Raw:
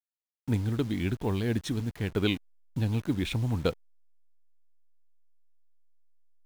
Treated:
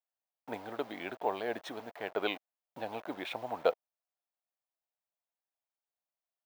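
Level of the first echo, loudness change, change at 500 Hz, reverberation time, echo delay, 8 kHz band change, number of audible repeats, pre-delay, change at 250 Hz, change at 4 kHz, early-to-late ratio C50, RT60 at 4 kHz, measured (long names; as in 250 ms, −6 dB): no echo audible, −7.0 dB, −1.0 dB, no reverb audible, no echo audible, below −10 dB, no echo audible, no reverb audible, −14.0 dB, −6.0 dB, no reverb audible, no reverb audible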